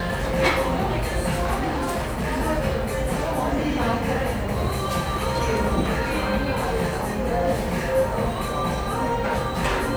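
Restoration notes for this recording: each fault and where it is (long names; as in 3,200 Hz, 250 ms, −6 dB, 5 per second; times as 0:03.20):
0:01.54–0:02.41: clipping −21 dBFS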